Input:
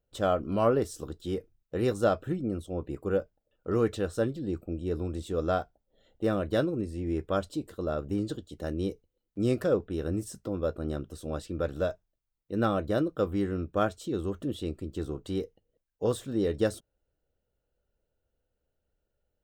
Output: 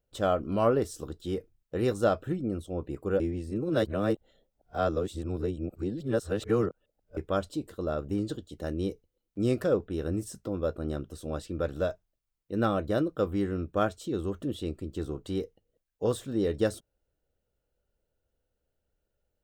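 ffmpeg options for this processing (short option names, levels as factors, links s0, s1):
-filter_complex "[0:a]asplit=3[s0][s1][s2];[s0]atrim=end=3.202[s3];[s1]atrim=start=3.198:end=7.172,asetpts=PTS-STARTPTS,areverse[s4];[s2]atrim=start=7.168[s5];[s3][s4]acrossfade=d=0.004:c1=hsin:c2=hsin[s6];[s6][s5]acrossfade=d=0.004:c1=hsin:c2=hsin"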